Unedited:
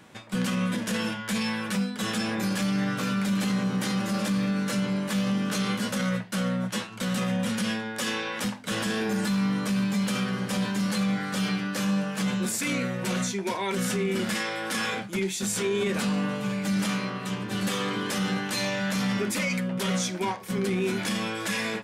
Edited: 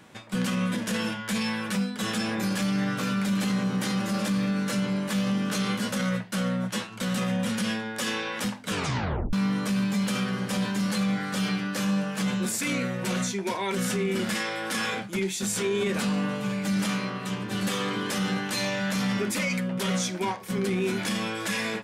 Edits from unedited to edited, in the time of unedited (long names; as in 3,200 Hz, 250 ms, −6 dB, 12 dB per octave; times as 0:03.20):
0:08.69: tape stop 0.64 s